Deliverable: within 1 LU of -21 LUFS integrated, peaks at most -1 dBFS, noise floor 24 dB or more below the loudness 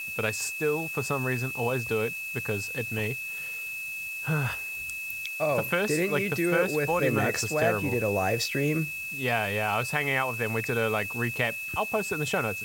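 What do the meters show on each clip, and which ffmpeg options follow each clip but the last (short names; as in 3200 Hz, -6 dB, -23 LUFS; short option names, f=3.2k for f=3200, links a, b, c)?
steady tone 2600 Hz; tone level -33 dBFS; noise floor -36 dBFS; noise floor target -52 dBFS; loudness -28.0 LUFS; peak -10.0 dBFS; loudness target -21.0 LUFS
-> -af "bandreject=f=2.6k:w=30"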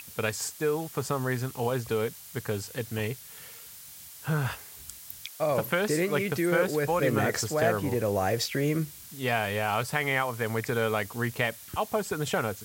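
steady tone none; noise floor -47 dBFS; noise floor target -53 dBFS
-> -af "afftdn=nr=6:nf=-47"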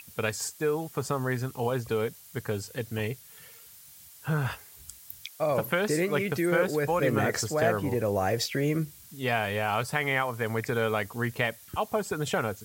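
noise floor -51 dBFS; noise floor target -53 dBFS
-> -af "afftdn=nr=6:nf=-51"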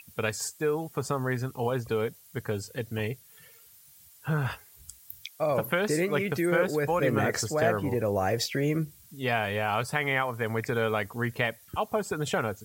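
noise floor -55 dBFS; loudness -29.0 LUFS; peak -10.5 dBFS; loudness target -21.0 LUFS
-> -af "volume=8dB"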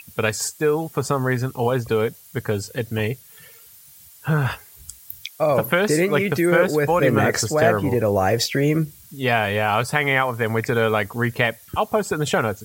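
loudness -21.0 LUFS; peak -2.5 dBFS; noise floor -47 dBFS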